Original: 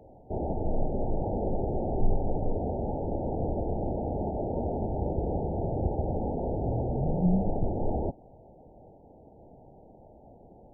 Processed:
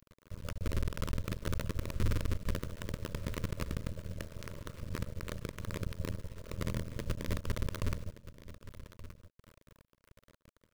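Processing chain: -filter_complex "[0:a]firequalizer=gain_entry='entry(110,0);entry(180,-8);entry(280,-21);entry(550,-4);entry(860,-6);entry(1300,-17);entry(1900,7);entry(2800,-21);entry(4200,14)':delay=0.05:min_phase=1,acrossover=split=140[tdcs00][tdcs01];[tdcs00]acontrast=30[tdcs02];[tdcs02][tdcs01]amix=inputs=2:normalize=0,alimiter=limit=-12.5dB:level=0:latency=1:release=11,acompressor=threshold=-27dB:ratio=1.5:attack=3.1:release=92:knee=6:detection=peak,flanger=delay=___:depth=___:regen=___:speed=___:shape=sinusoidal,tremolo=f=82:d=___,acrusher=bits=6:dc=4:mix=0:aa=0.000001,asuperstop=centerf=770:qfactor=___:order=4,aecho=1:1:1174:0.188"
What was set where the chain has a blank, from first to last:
8.2, 1.4, 45, 0.39, 0.919, 2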